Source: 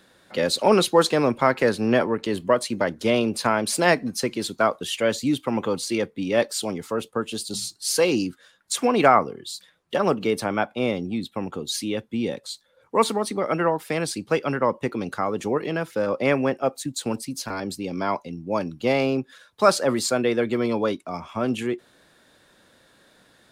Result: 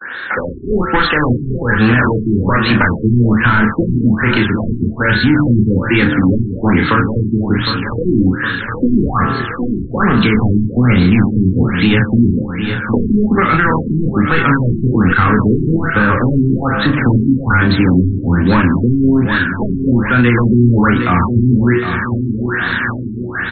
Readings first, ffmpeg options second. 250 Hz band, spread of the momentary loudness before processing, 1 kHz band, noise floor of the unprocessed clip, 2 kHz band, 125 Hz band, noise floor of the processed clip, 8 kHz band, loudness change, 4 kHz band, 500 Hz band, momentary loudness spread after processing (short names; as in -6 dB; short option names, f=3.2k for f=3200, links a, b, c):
+14.5 dB, 11 LU, +7.0 dB, -59 dBFS, +14.5 dB, +21.0 dB, -23 dBFS, under -40 dB, +10.5 dB, +5.0 dB, +2.0 dB, 7 LU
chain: -filter_complex "[0:a]bandreject=f=74.03:t=h:w=4,bandreject=f=148.06:t=h:w=4,bandreject=f=222.09:t=h:w=4,bandreject=f=296.12:t=h:w=4,bandreject=f=370.15:t=h:w=4,bandreject=f=444.18:t=h:w=4,bandreject=f=518.21:t=h:w=4,bandreject=f=592.24:t=h:w=4,bandreject=f=666.27:t=h:w=4,bandreject=f=740.3:t=h:w=4,bandreject=f=814.33:t=h:w=4,bandreject=f=888.36:t=h:w=4,bandreject=f=962.39:t=h:w=4,bandreject=f=1.03642k:t=h:w=4,bandreject=f=1.11045k:t=h:w=4,bandreject=f=1.18448k:t=h:w=4,bandreject=f=1.25851k:t=h:w=4,bandreject=f=1.33254k:t=h:w=4,bandreject=f=1.40657k:t=h:w=4,bandreject=f=1.4806k:t=h:w=4,bandreject=f=1.55463k:t=h:w=4,bandreject=f=1.62866k:t=h:w=4,bandreject=f=1.70269k:t=h:w=4,bandreject=f=1.77672k:t=h:w=4,bandreject=f=1.85075k:t=h:w=4,asubboost=boost=6:cutoff=190,asplit=2[a][b];[b]highpass=f=720:p=1,volume=23dB,asoftclip=type=tanh:threshold=-5dB[c];[a][c]amix=inputs=2:normalize=0,lowpass=f=3.2k:p=1,volume=-6dB,dynaudnorm=f=250:g=5:m=10dB,equalizer=f=160:t=o:w=0.67:g=-7,equalizer=f=630:t=o:w=0.67:g=-11,equalizer=f=1.6k:t=o:w=0.67:g=11,equalizer=f=6.3k:t=o:w=0.67:g=-6,acrusher=bits=5:mode=log:mix=0:aa=0.000001,acrossover=split=160[d][e];[e]acompressor=threshold=-25dB:ratio=4[f];[d][f]amix=inputs=2:normalize=0,asplit=2[g][h];[h]adelay=33,volume=-4dB[i];[g][i]amix=inputs=2:normalize=0,aecho=1:1:761|1522|2283|3044|3805|4566:0.316|0.174|0.0957|0.0526|0.0289|0.0159,agate=range=-31dB:threshold=-41dB:ratio=16:detection=peak,alimiter=level_in=12.5dB:limit=-1dB:release=50:level=0:latency=1,afftfilt=real='re*lt(b*sr/1024,390*pow(4400/390,0.5+0.5*sin(2*PI*1.2*pts/sr)))':imag='im*lt(b*sr/1024,390*pow(4400/390,0.5+0.5*sin(2*PI*1.2*pts/sr)))':win_size=1024:overlap=0.75,volume=-1dB"